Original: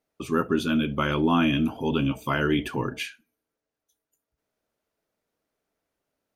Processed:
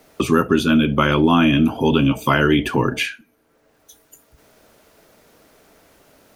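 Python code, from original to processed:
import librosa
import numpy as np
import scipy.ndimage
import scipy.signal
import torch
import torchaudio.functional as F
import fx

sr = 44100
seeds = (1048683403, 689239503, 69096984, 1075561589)

y = fx.band_squash(x, sr, depth_pct=70)
y = F.gain(torch.from_numpy(y), 8.0).numpy()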